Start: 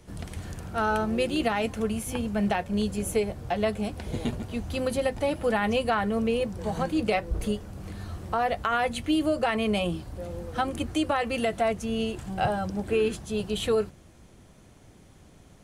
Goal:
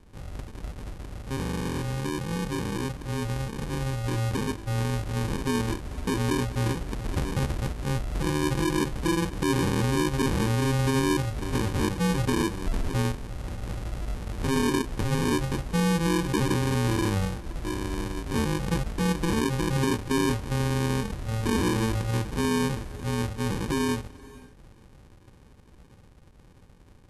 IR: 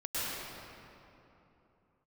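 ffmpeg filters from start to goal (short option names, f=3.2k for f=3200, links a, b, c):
-filter_complex "[0:a]acrusher=samples=38:mix=1:aa=0.000001,asplit=2[a][b];[1:a]atrim=start_sample=2205,afade=t=out:st=0.25:d=0.01,atrim=end_sample=11466,adelay=137[c];[b][c]afir=irnorm=-1:irlink=0,volume=-28.5dB[d];[a][d]amix=inputs=2:normalize=0,alimiter=level_in=0.5dB:limit=-24dB:level=0:latency=1:release=15,volume=-0.5dB,dynaudnorm=f=840:g=7:m=5.5dB,asetrate=25442,aresample=44100"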